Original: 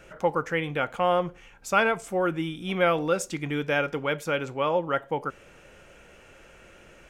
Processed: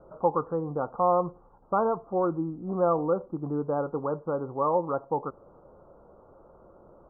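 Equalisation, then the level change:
Butterworth low-pass 1,200 Hz 72 dB per octave
spectral tilt +1.5 dB per octave
dynamic equaliser 610 Hz, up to −4 dB, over −41 dBFS, Q 3.9
+2.5 dB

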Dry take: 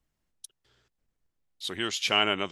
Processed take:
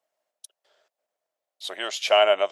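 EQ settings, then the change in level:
high-pass with resonance 620 Hz, resonance Q 7.2
0.0 dB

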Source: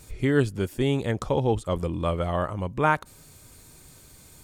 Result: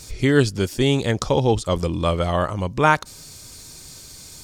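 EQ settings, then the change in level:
parametric band 5,200 Hz +13 dB 1.1 octaves
+5.0 dB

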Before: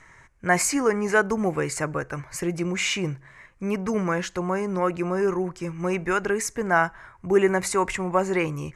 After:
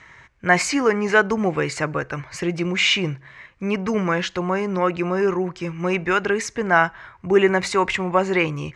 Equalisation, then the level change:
high-pass filter 45 Hz
low-pass filter 5,100 Hz 12 dB per octave
parametric band 3,400 Hz +8 dB 1.2 octaves
+3.0 dB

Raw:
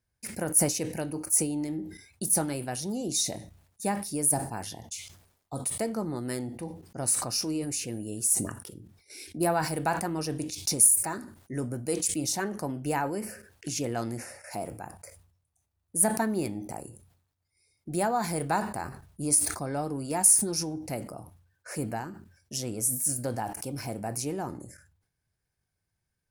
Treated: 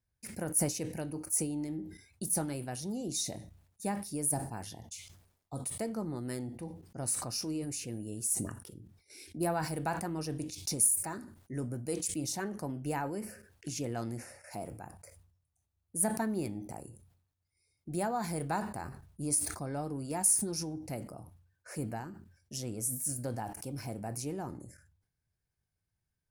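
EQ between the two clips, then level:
low-shelf EQ 230 Hz +5.5 dB
−7.0 dB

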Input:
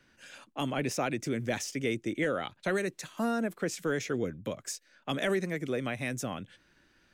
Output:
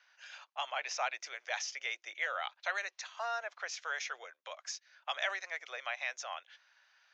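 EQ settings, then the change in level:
Butterworth high-pass 700 Hz 36 dB per octave
Butterworth low-pass 6,500 Hz 72 dB per octave
0.0 dB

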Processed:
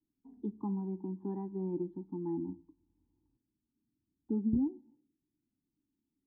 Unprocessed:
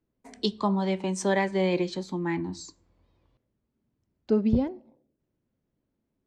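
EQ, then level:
formant resonators in series u
phaser with its sweep stopped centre 2,200 Hz, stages 6
+3.0 dB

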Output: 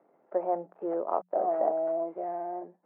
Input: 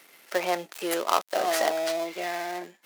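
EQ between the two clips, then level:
transistor ladder low-pass 920 Hz, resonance 30%
high-frequency loss of the air 130 metres
mains-hum notches 60/120/180 Hz
+3.5 dB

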